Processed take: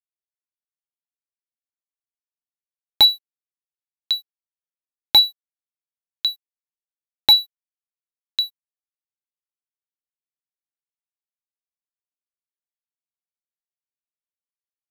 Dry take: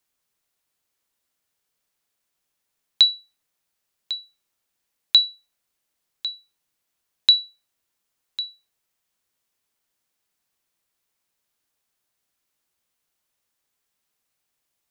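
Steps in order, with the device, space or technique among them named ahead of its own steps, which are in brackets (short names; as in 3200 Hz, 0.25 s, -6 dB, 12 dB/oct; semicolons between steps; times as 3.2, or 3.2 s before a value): early transistor amplifier (crossover distortion -44.5 dBFS; slew limiter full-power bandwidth 600 Hz); gain +8 dB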